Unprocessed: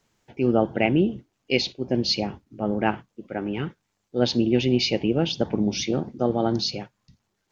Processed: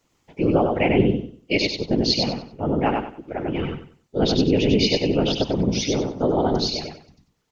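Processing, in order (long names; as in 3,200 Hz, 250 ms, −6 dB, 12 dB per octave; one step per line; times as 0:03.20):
notch filter 1,600 Hz, Q 10
random phases in short frames
repeating echo 95 ms, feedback 27%, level −3.5 dB
level +1 dB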